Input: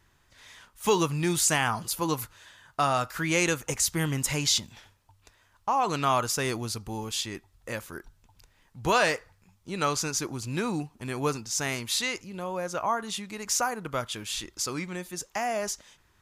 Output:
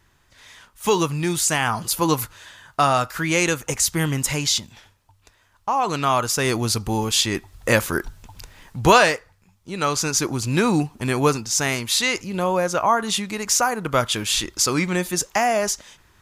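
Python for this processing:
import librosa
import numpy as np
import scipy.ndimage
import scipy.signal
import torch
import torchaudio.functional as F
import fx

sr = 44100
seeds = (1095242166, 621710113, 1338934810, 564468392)

y = fx.rider(x, sr, range_db=10, speed_s=0.5)
y = y * 10.0 ** (7.5 / 20.0)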